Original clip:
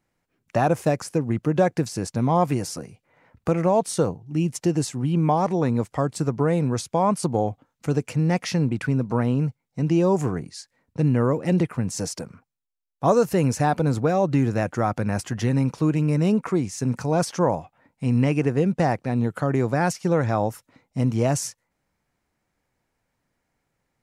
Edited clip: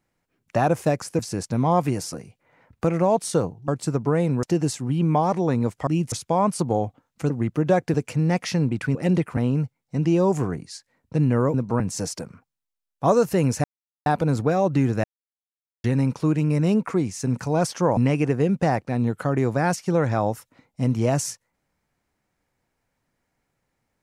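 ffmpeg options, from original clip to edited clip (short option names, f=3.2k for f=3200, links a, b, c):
-filter_complex "[0:a]asplit=16[a][b][c][d][e][f][g][h][i][j][k][l][m][n][o][p];[a]atrim=end=1.192[q];[b]atrim=start=1.828:end=4.322[r];[c]atrim=start=6.008:end=6.762[s];[d]atrim=start=4.568:end=6.012[t];[e]atrim=start=4.318:end=4.572[u];[f]atrim=start=6.758:end=7.942[v];[g]atrim=start=1.188:end=1.832[w];[h]atrim=start=7.938:end=8.952[x];[i]atrim=start=11.378:end=11.802[y];[j]atrim=start=9.208:end=11.382[z];[k]atrim=start=8.948:end=9.212[aa];[l]atrim=start=11.798:end=13.64,asetpts=PTS-STARTPTS,afade=t=out:st=1.838:d=0.004:c=hsin,apad=pad_dur=0.42[ab];[m]atrim=start=13.64:end=14.62,asetpts=PTS-STARTPTS,afade=t=in:d=0.004:c=hsin,afade=t=out:st=0.976:d=0.004:c=hsin[ac];[n]atrim=start=14.62:end=15.42,asetpts=PTS-STARTPTS,volume=0[ad];[o]atrim=start=15.42:end=17.552,asetpts=PTS-STARTPTS,afade=t=in:d=0.004:c=hsin[ae];[p]atrim=start=18.138[af];[q][r]acrossfade=d=0.004:c1=hsin:c2=hsin[ag];[ag][s]acrossfade=d=0.004:c1=hsin:c2=hsin[ah];[ah][t]acrossfade=d=0.004:c1=hsin:c2=hsin[ai];[ai][u]acrossfade=d=0.004:c1=hsin:c2=hsin[aj];[aj][v]acrossfade=d=0.004:c1=hsin:c2=hsin[ak];[ak][w]acrossfade=d=0.004:c1=hsin:c2=hsin[al];[al][x]acrossfade=d=0.004:c1=hsin:c2=hsin[am];[am][y]acrossfade=d=0.004:c1=hsin:c2=hsin[an];[an][z]acrossfade=d=0.004:c1=hsin:c2=hsin[ao];[ao][aa]acrossfade=d=0.004:c1=hsin:c2=hsin[ap];[ab][ac][ad][ae]concat=n=4:v=0:a=1[aq];[ap][aq]acrossfade=d=0.004:c1=hsin:c2=hsin[ar];[ar][af]acrossfade=d=0.004:c1=hsin:c2=hsin"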